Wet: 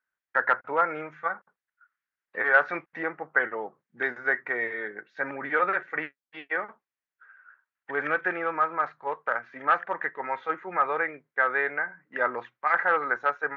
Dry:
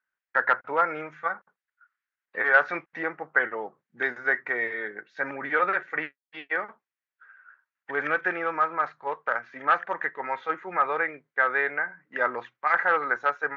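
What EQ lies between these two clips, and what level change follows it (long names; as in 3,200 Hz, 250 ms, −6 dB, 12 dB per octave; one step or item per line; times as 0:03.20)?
high-shelf EQ 4,200 Hz −8.5 dB
0.0 dB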